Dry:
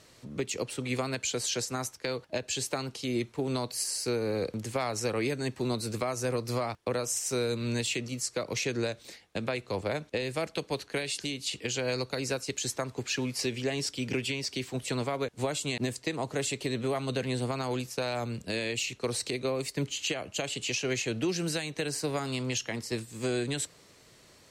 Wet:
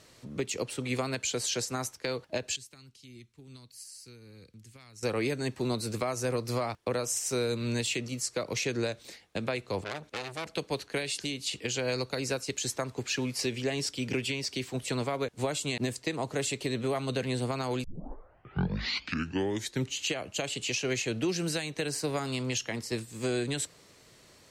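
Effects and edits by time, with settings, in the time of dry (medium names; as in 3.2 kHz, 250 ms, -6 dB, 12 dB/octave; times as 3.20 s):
2.56–5.03 s: amplifier tone stack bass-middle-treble 6-0-2
9.84–10.55 s: transformer saturation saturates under 2.9 kHz
17.84 s: tape start 2.14 s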